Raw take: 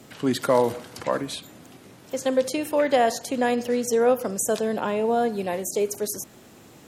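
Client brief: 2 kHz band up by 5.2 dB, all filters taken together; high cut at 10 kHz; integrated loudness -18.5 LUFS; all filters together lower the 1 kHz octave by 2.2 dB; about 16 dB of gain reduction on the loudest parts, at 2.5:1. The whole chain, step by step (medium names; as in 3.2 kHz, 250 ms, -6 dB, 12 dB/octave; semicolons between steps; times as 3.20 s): low-pass 10 kHz; peaking EQ 1 kHz -5 dB; peaking EQ 2 kHz +8 dB; compression 2.5:1, threshold -41 dBFS; trim +20 dB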